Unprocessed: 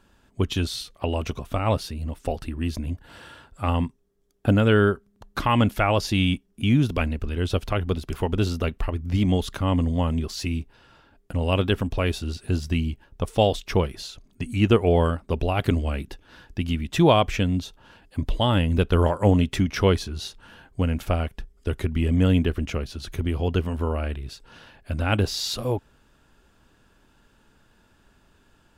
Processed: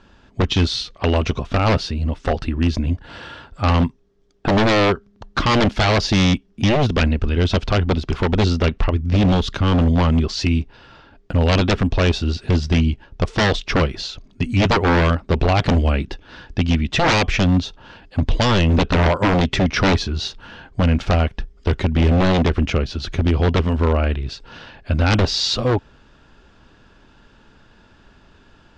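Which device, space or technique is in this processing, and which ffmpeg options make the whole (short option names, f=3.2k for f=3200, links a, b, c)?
synthesiser wavefolder: -filter_complex "[0:a]asettb=1/sr,asplit=3[a][b][c];[a]atrim=end=8.924[d];[b]atrim=start=8.92:end=9.78,asetpts=PTS-STARTPTS,afade=t=in:d=0.004:c=qsin,afade=t=out:st=0.856:d=0.004:c=qsin,equalizer=f=890:t=o:w=1.9:g=-4[e];[c]atrim=start=9.776[f];[d][e]acrossfade=d=0.004:c1=hsin:c2=qsin[g];[g][f]acrossfade=d=0.004:c1=qsin:c2=hsin,aeval=exprs='0.112*(abs(mod(val(0)/0.112+3,4)-2)-1)':c=same,lowpass=f=5.8k:w=0.5412,lowpass=f=5.8k:w=1.3066,volume=9dB"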